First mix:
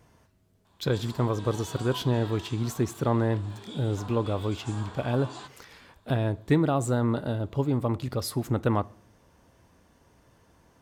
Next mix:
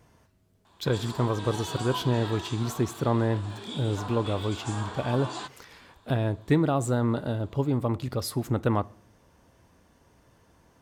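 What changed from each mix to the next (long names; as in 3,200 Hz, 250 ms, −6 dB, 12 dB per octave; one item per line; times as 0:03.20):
background +6.0 dB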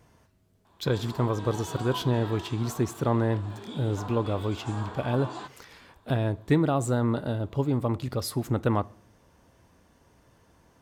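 background: add high-shelf EQ 2,400 Hz −10.5 dB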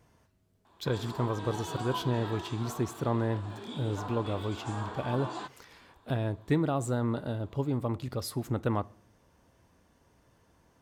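speech −4.5 dB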